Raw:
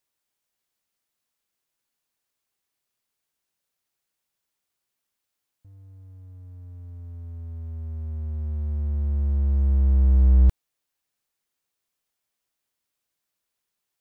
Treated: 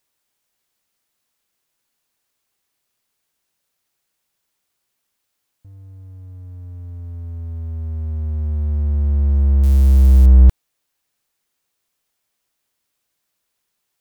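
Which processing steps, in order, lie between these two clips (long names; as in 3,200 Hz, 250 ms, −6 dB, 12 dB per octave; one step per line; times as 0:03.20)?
0:09.63–0:10.26: spike at every zero crossing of −24.5 dBFS
level +7.5 dB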